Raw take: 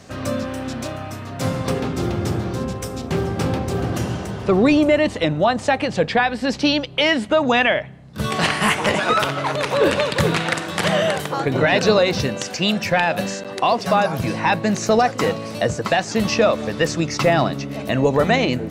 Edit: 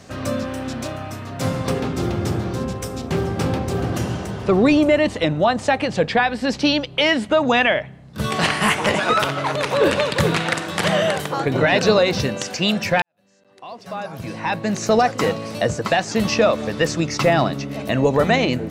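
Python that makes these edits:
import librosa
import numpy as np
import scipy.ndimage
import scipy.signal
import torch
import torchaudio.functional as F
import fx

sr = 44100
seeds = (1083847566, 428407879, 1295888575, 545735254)

y = fx.edit(x, sr, fx.fade_in_span(start_s=13.02, length_s=1.94, curve='qua'), tone=tone)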